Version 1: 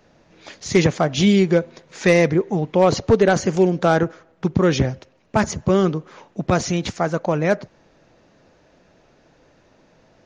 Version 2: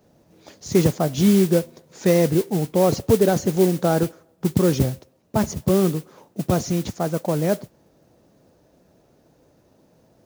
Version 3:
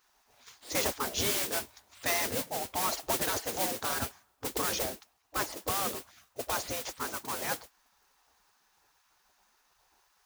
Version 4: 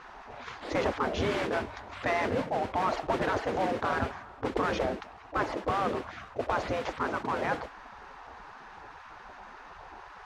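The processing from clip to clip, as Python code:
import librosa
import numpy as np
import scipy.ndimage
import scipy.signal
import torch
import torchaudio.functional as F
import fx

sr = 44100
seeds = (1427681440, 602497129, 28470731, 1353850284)

y1 = fx.peak_eq(x, sr, hz=2200.0, db=-12.5, octaves=2.3)
y1 = fx.mod_noise(y1, sr, seeds[0], snr_db=17)
y1 = scipy.signal.sosfilt(scipy.signal.butter(2, 51.0, 'highpass', fs=sr, output='sos'), y1)
y2 = fx.spec_gate(y1, sr, threshold_db=-15, keep='weak')
y3 = scipy.signal.sosfilt(scipy.signal.butter(2, 1700.0, 'lowpass', fs=sr, output='sos'), y2)
y3 = fx.env_flatten(y3, sr, amount_pct=50)
y3 = y3 * librosa.db_to_amplitude(3.5)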